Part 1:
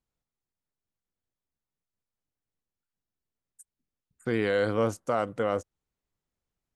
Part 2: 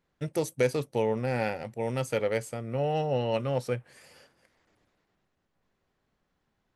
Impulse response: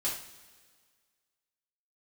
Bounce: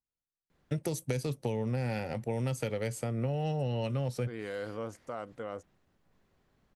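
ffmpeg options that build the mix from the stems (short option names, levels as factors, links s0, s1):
-filter_complex "[0:a]volume=0.251,asplit=2[s0][s1];[1:a]lowshelf=f=320:g=5,acrossover=split=210|3000[s2][s3][s4];[s3]acompressor=threshold=0.0282:ratio=6[s5];[s2][s5][s4]amix=inputs=3:normalize=0,adelay=500,volume=1.41[s6];[s1]apad=whole_len=319805[s7];[s6][s7]sidechaincompress=threshold=0.00794:ratio=8:attack=5.7:release=107[s8];[s0][s8]amix=inputs=2:normalize=0,acompressor=threshold=0.0282:ratio=2.5"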